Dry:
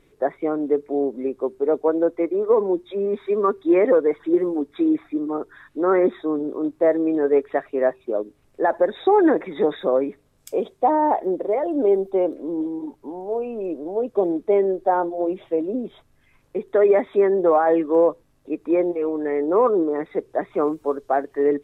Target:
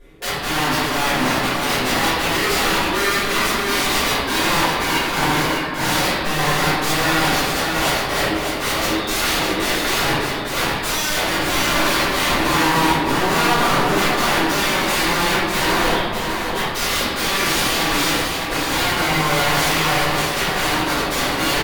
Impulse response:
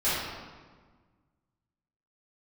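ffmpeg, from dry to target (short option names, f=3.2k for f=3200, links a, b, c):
-filter_complex "[0:a]areverse,acompressor=mode=upward:threshold=-20dB:ratio=2.5,areverse,aeval=exprs='(mod(14.1*val(0)+1,2)-1)/14.1':c=same,aecho=1:1:604:0.562[a];[1:a]atrim=start_sample=2205,asetrate=39690,aresample=44100[b];[a][b]afir=irnorm=-1:irlink=0,volume=-4dB"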